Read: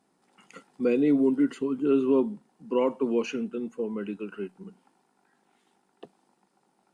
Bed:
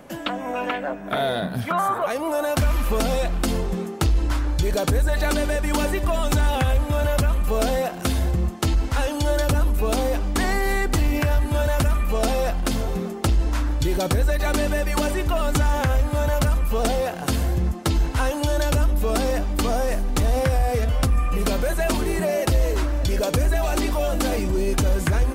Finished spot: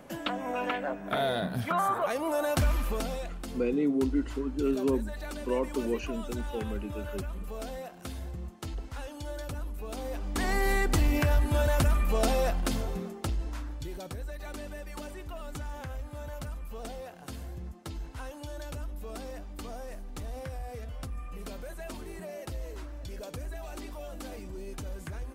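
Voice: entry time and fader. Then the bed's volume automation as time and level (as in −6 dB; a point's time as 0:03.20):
2.75 s, −5.0 dB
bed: 0:02.67 −5.5 dB
0:03.43 −17 dB
0:09.89 −17 dB
0:10.62 −4.5 dB
0:12.46 −4.5 dB
0:14.08 −18.5 dB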